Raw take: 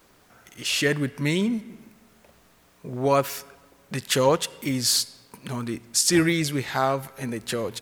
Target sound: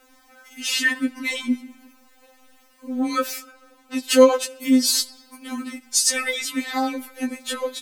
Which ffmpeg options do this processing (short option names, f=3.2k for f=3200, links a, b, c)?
-filter_complex "[0:a]asettb=1/sr,asplit=3[a][b][c];[a]atrim=end=3.394[d];[b]atrim=start=3.39:end=3.98,asetpts=PTS-STARTPTS,afade=t=in:d=0.004:c=qsin,afade=t=out:st=0.586:d=0.004:c=qsin,highshelf=f=8.1k:g=-5.5[e];[c]atrim=start=3.976[f];[d][e]acrossfade=d=0.004:c1=hsin:c2=qsin[g];[g][f]acrossfade=d=0.004:c1=qsin:c2=hsin,afftfilt=real='re*3.46*eq(mod(b,12),0)':imag='im*3.46*eq(mod(b,12),0)':win_size=2048:overlap=0.75,volume=4.5dB"